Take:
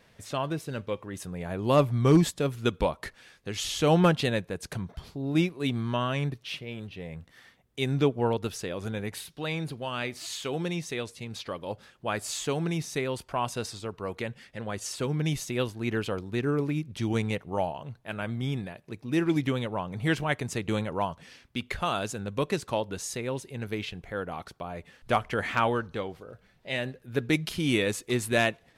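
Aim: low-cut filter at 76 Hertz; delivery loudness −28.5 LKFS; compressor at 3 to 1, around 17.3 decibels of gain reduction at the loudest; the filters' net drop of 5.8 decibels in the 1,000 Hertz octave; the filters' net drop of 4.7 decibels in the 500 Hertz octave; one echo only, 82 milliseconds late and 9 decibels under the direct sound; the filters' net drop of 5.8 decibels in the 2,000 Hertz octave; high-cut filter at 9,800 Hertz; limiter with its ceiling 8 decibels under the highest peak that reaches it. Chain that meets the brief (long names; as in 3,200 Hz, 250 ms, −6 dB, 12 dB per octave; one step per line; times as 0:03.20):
high-pass filter 76 Hz
low-pass filter 9,800 Hz
parametric band 500 Hz −4.5 dB
parametric band 1,000 Hz −4.5 dB
parametric band 2,000 Hz −6 dB
downward compressor 3 to 1, threshold −41 dBFS
brickwall limiter −32.5 dBFS
single-tap delay 82 ms −9 dB
level +15 dB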